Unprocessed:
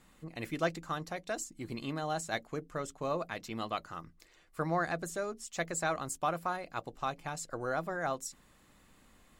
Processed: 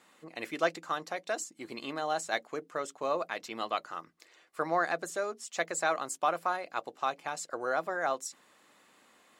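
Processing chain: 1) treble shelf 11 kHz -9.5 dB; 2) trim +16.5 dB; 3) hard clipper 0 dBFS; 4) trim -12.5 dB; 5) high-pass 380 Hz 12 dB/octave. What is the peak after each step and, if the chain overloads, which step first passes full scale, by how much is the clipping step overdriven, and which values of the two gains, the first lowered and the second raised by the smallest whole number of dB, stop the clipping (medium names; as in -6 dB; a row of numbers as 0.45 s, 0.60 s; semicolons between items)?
-19.0 dBFS, -2.5 dBFS, -2.5 dBFS, -15.0 dBFS, -12.5 dBFS; nothing clips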